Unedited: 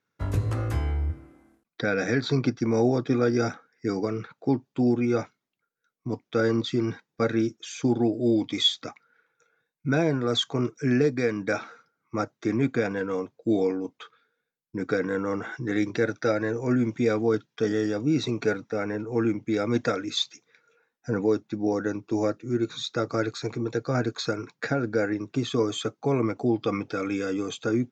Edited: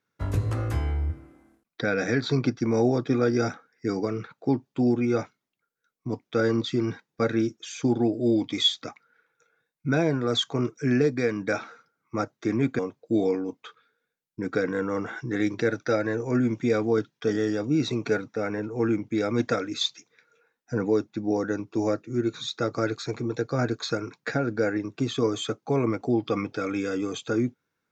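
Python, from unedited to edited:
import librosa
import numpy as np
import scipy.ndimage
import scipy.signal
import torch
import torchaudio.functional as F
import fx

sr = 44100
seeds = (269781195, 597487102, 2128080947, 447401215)

y = fx.edit(x, sr, fx.cut(start_s=12.79, length_s=0.36), tone=tone)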